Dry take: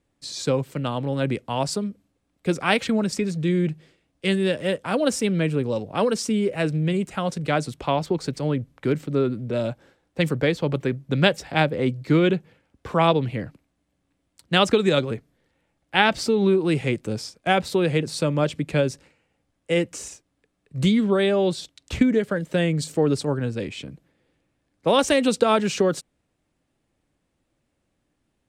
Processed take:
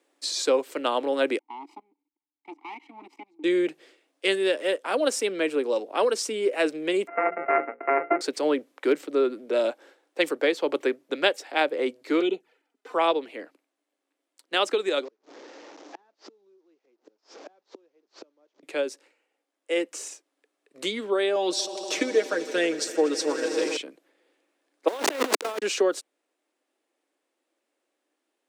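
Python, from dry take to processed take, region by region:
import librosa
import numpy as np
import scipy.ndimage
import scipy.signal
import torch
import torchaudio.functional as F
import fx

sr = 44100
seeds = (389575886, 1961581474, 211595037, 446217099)

y = fx.chain(x, sr, fx.lower_of_two(delay_ms=1.0),
    fx.vowel_filter(vowel='u'),
    fx.level_steps(step_db=20), at=(1.39, 3.44))
y = fx.chain(y, sr, fx.sample_sort(block=64),
    fx.steep_lowpass(hz=2400.0, slope=96),
    fx.hum_notches(base_hz=60, count=9), at=(7.07, 8.21))
y = fx.chain(y, sr, fx.notch_comb(f0_hz=550.0),
    fx.env_flanger(rest_ms=5.9, full_db=-18.0), at=(12.2, 12.94))
y = fx.chain(y, sr, fx.delta_mod(bps=32000, step_db=-29.5),
    fx.peak_eq(hz=2900.0, db=-11.0, octaves=2.6),
    fx.gate_flip(shuts_db=-21.0, range_db=-34), at=(15.05, 18.63))
y = fx.chain(y, sr, fx.peak_eq(hz=5700.0, db=11.0, octaves=0.46),
    fx.comb(ms=6.3, depth=0.65),
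    fx.echo_swell(ms=80, loudest=5, wet_db=-18.0), at=(21.35, 23.77))
y = fx.chain(y, sr, fx.delta_hold(step_db=-18.0),
    fx.high_shelf(hz=6800.0, db=-8.0),
    fx.over_compress(threshold_db=-26.0, ratio=-0.5), at=(24.88, 25.62))
y = scipy.signal.sosfilt(scipy.signal.butter(6, 310.0, 'highpass', fs=sr, output='sos'), y)
y = fx.rider(y, sr, range_db=10, speed_s=0.5)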